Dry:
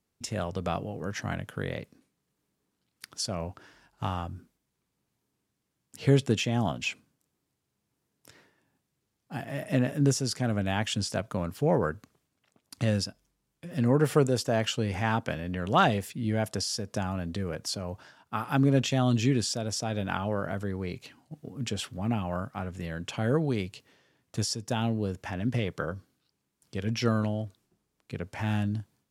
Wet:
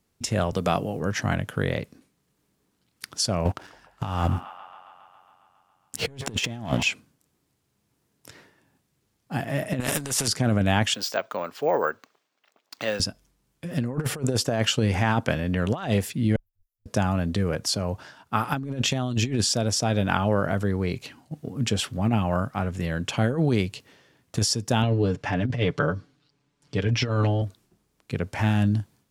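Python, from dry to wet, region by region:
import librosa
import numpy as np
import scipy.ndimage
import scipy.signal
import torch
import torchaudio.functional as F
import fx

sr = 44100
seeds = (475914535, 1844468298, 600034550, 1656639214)

y = fx.chain(x, sr, fx.highpass(hz=120.0, slope=12),
    fx.high_shelf(hz=7000.0, db=9.0), at=(0.52, 0.99))
y = fx.chain(y, sr, fx.leveller(passes=2),
    fx.echo_wet_bandpass(ms=137, feedback_pct=73, hz=1500.0, wet_db=-17.0), at=(3.45, 6.83))
y = fx.chain(y, sr, fx.peak_eq(hz=8800.0, db=11.5, octaves=0.6),
    fx.over_compress(threshold_db=-33.0, ratio=-1.0),
    fx.spectral_comp(ratio=2.0), at=(9.8, 10.28))
y = fx.chain(y, sr, fx.bandpass_edges(low_hz=530.0, high_hz=5800.0),
    fx.resample_bad(factor=2, down='none', up='hold'), at=(10.94, 13.0))
y = fx.chain(y, sr, fx.cheby2_bandstop(low_hz=140.0, high_hz=9400.0, order=4, stop_db=70),
    fx.ensemble(), at=(16.36, 16.86))
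y = fx.chain(y, sr, fx.lowpass(hz=5200.0, slope=12),
    fx.comb(ms=6.9, depth=0.68), at=(24.82, 27.42))
y = fx.low_shelf(y, sr, hz=74.0, db=3.5)
y = fx.over_compress(y, sr, threshold_db=-27.0, ratio=-0.5)
y = y * 10.0 ** (5.0 / 20.0)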